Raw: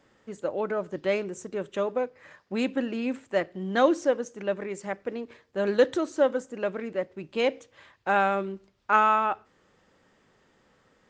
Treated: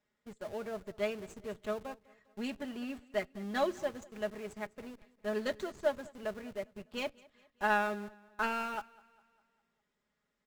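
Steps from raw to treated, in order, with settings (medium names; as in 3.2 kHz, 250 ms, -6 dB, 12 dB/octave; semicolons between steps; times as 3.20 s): tracing distortion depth 0.024 ms; peaking EQ 440 Hz -4.5 dB 2.7 oct; comb 5.1 ms, depth 64%; in parallel at -7.5 dB: Schmitt trigger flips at -39 dBFS; on the sum: tape speed +6%; on a send: feedback delay 202 ms, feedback 51%, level -16.5 dB; on the sum: upward expansion 1.5:1, over -41 dBFS; trim -7 dB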